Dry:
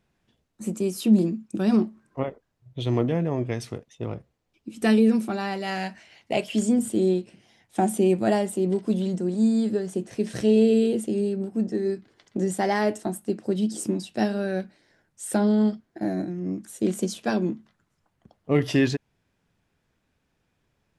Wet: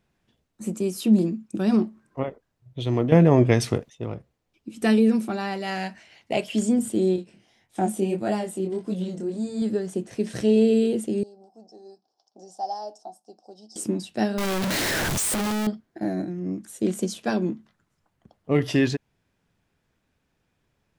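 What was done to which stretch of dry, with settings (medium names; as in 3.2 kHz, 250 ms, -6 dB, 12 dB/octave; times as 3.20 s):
3.12–3.90 s: gain +10 dB
7.16–9.62 s: chorus 1.7 Hz, delay 20 ms, depth 5.8 ms
11.23–13.76 s: two resonant band-passes 2 kHz, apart 2.8 oct
14.38–15.67 s: one-bit comparator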